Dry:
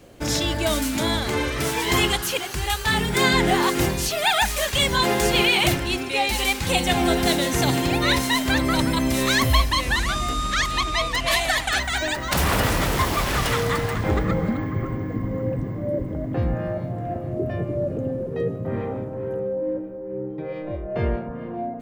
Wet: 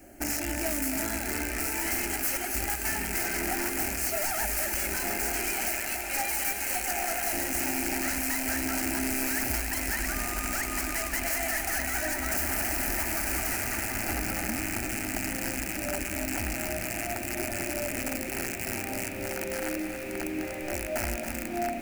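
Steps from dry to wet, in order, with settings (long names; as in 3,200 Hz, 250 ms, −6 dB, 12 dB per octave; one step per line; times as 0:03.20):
loose part that buzzes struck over −30 dBFS, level −11 dBFS
0:05.65–0:07.33: inverse Chebyshev high-pass filter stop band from 260 Hz, stop band 40 dB
downward compressor 16 to 1, threshold −24 dBFS, peak gain reduction 12.5 dB
high-shelf EQ 9,300 Hz +10 dB
feedback delay with all-pass diffusion 1,563 ms, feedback 72%, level −11.5 dB
wrap-around overflow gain 20.5 dB
phaser with its sweep stopped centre 720 Hz, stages 8
feedback echo at a low word length 276 ms, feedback 35%, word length 7 bits, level −7 dB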